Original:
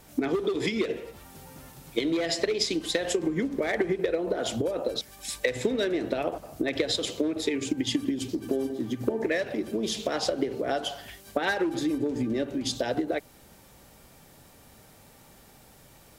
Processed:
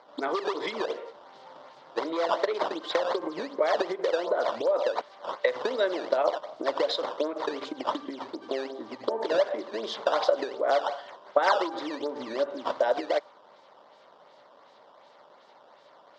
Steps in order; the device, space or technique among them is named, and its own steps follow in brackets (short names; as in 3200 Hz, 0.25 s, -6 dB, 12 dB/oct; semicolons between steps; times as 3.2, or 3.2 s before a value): dynamic EQ 1200 Hz, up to +7 dB, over -47 dBFS, Q 1.2; circuit-bent sampling toy (decimation with a swept rate 12×, swing 160% 2.7 Hz; speaker cabinet 510–4500 Hz, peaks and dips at 580 Hz +8 dB, 1000 Hz +7 dB, 1700 Hz -4 dB, 2500 Hz -10 dB)